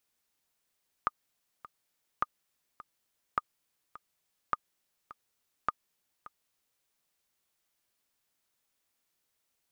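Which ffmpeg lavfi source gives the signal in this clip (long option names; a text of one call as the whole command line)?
ffmpeg -f lavfi -i "aevalsrc='pow(10,(-14-18.5*gte(mod(t,2*60/104),60/104))/20)*sin(2*PI*1220*mod(t,60/104))*exp(-6.91*mod(t,60/104)/0.03)':duration=5.76:sample_rate=44100" out.wav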